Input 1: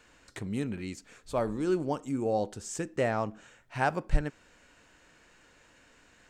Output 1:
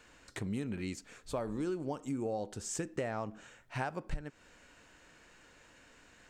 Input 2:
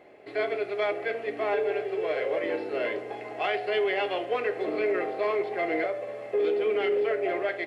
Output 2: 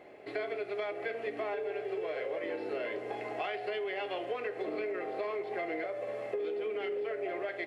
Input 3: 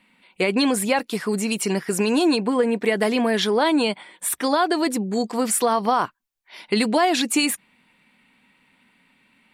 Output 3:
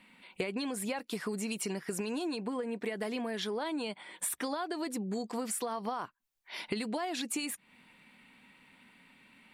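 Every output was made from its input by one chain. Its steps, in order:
compressor 16:1, threshold -32 dBFS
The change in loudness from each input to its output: -6.5, -8.0, -14.5 LU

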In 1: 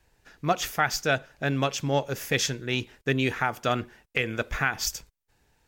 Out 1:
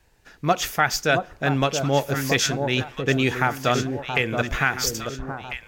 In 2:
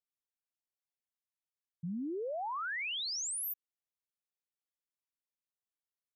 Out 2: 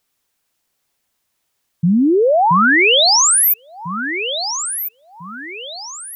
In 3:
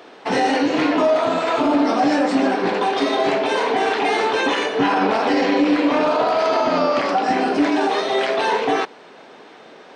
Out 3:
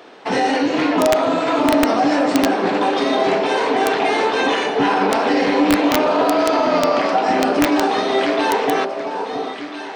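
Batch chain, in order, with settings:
echo with dull and thin repeats by turns 0.674 s, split 1100 Hz, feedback 60%, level -5.5 dB; wrapped overs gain 6.5 dB; normalise peaks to -6 dBFS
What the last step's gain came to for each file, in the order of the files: +4.0, +24.5, +0.5 dB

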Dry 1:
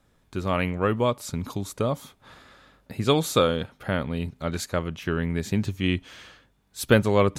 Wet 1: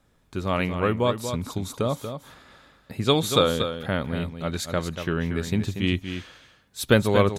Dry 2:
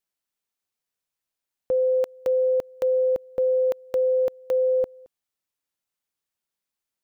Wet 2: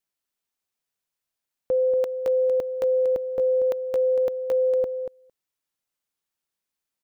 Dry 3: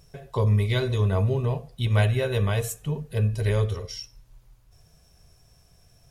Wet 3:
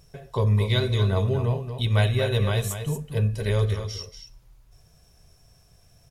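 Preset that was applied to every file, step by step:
dynamic EQ 3700 Hz, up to +7 dB, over -54 dBFS, Q 6.8; on a send: echo 0.236 s -8.5 dB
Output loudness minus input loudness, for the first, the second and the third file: +0.5, 0.0, +0.5 LU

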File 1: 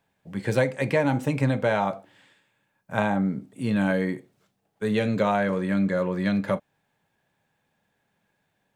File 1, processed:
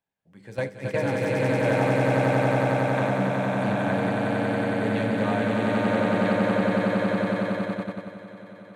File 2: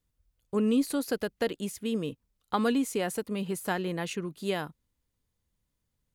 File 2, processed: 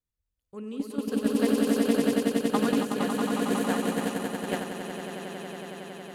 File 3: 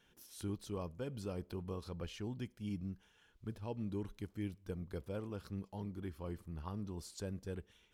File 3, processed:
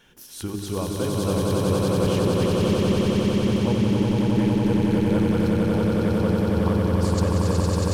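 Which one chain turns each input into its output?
notches 50/100/150/200/250/300/350/400/450 Hz; on a send: swelling echo 92 ms, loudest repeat 8, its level -3 dB; on the sum: gate -21 dBFS, range -10 dB; Doppler distortion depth 0.16 ms; normalise peaks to -9 dBFS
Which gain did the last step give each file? -6.0, -2.0, +24.0 dB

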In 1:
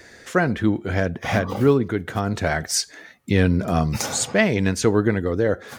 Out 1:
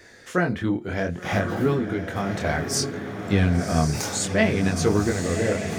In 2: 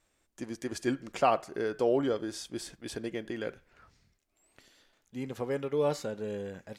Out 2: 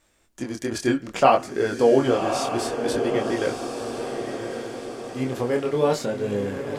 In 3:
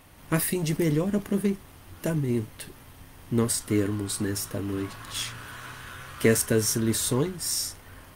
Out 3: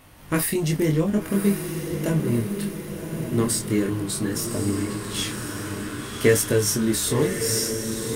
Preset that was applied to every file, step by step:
chorus 0.62 Hz, delay 19.5 ms, depth 6.7 ms; diffused feedback echo 1.108 s, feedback 53%, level -6.5 dB; match loudness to -24 LUFS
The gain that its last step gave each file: -0.5, +12.0, +5.5 dB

